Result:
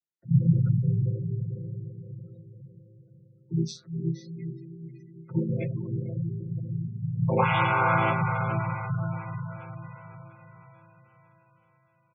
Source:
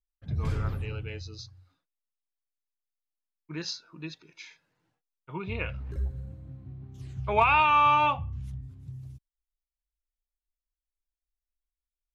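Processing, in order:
channel vocoder with a chord as carrier minor triad, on A2
high-shelf EQ 4,900 Hz +8.5 dB
mains-hum notches 50/100/150/200/250/300/350/400 Hz
comb filter 5.6 ms, depth 59%
dynamic equaliser 160 Hz, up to +4 dB, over −39 dBFS, Q 1
feedback delay with all-pass diffusion 456 ms, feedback 52%, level −6 dB
gate on every frequency bin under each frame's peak −20 dB strong

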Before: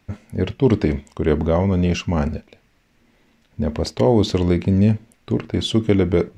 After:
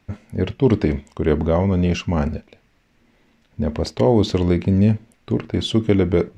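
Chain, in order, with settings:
high-shelf EQ 6,600 Hz −5 dB

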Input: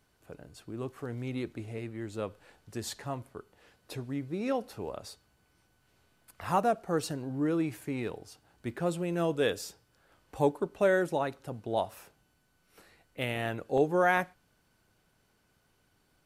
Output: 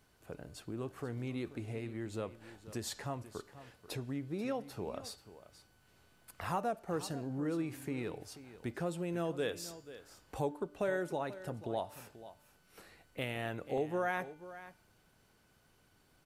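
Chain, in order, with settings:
hum removal 294.8 Hz, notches 27
downward compressor 2 to 1, threshold −41 dBFS, peak gain reduction 11.5 dB
single-tap delay 486 ms −15 dB
level +1.5 dB

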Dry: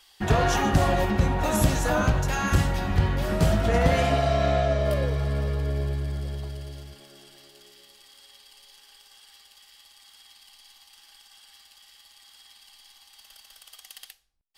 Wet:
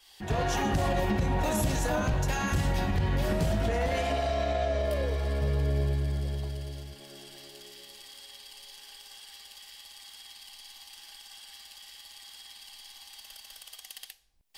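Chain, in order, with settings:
fade in at the beginning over 0.74 s
brickwall limiter −19 dBFS, peak gain reduction 10 dB
parametric band 1,300 Hz −6 dB 0.36 octaves
upward compression, threshold −41 dBFS
0:03.71–0:05.42: parametric band 140 Hz −13 dB 0.67 octaves

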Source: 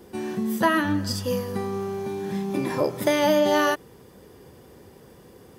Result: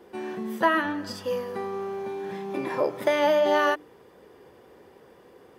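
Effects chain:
bass and treble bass −12 dB, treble −12 dB
mains-hum notches 50/100/150/200/250/300 Hz

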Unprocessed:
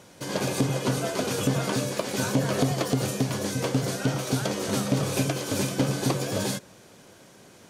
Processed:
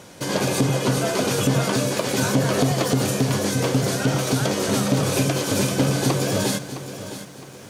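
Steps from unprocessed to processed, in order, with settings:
in parallel at +2 dB: brickwall limiter −21 dBFS, peak gain reduction 9.5 dB
on the sum: feedback echo at a low word length 662 ms, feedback 35%, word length 8 bits, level −12 dB

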